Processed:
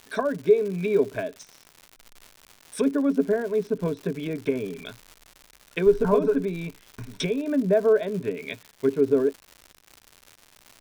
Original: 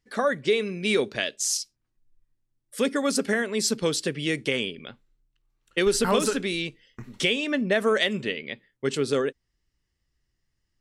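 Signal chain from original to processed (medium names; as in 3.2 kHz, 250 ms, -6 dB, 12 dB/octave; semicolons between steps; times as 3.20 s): low-pass that closes with the level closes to 850 Hz, closed at -23.5 dBFS; rippled EQ curve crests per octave 1.6, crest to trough 13 dB; crackle 210 per s -34 dBFS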